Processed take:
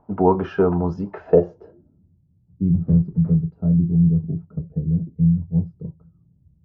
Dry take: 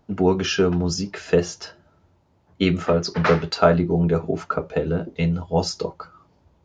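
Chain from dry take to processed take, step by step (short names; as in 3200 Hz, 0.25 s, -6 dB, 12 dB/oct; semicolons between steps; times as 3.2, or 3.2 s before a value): 2.74–3.16 half-waves squared off; low-pass sweep 950 Hz -> 150 Hz, 1.18–2.21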